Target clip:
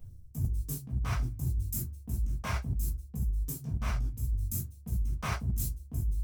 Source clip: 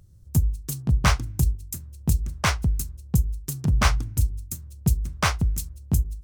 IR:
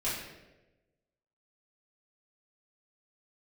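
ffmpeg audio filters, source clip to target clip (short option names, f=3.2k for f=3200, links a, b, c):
-filter_complex "[0:a]asplit=2[a][b];[b]adynamicsmooth=sensitivity=1.5:basefreq=940,volume=0dB[c];[a][c]amix=inputs=2:normalize=0,highshelf=f=9.5k:g=12,flanger=delay=1.4:depth=9.1:regen=-66:speed=1:shape=triangular,lowshelf=f=130:g=3[d];[1:a]atrim=start_sample=2205,atrim=end_sample=3969[e];[d][e]afir=irnorm=-1:irlink=0,areverse,acompressor=threshold=-23dB:ratio=12,areverse,volume=-5dB"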